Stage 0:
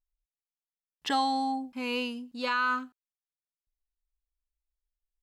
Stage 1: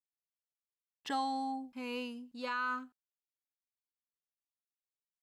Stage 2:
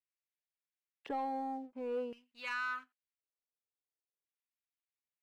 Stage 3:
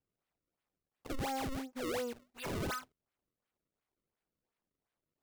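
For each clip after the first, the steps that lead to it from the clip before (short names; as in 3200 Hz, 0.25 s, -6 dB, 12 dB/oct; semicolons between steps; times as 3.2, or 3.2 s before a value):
dynamic EQ 3500 Hz, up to -4 dB, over -46 dBFS, Q 0.92; expander -52 dBFS; gain -7 dB
LFO band-pass square 0.47 Hz 470–2200 Hz; sample leveller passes 1; gain +4 dB
decimation with a swept rate 31×, swing 160% 2.8 Hz; soft clip -37.5 dBFS, distortion -12 dB; gain +4.5 dB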